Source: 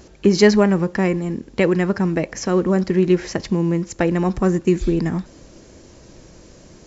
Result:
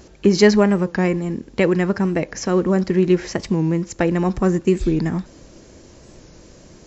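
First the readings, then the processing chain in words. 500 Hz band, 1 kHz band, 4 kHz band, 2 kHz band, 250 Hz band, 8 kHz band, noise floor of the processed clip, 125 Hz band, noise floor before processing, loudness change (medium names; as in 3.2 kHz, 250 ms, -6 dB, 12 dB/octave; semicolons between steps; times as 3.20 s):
0.0 dB, 0.0 dB, 0.0 dB, 0.0 dB, 0.0 dB, no reading, -46 dBFS, 0.0 dB, -46 dBFS, 0.0 dB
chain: warped record 45 rpm, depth 100 cents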